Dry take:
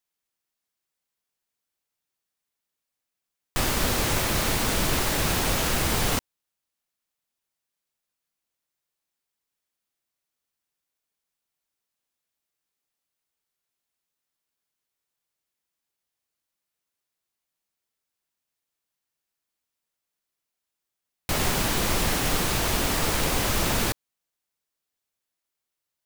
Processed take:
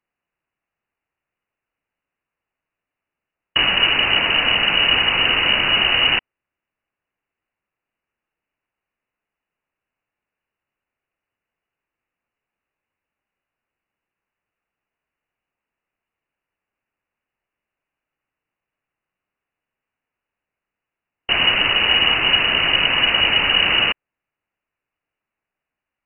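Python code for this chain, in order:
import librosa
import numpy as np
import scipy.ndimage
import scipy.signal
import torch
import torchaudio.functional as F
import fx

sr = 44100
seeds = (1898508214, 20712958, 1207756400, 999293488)

y = fx.freq_invert(x, sr, carrier_hz=2900)
y = F.gain(torch.from_numpy(y), 7.5).numpy()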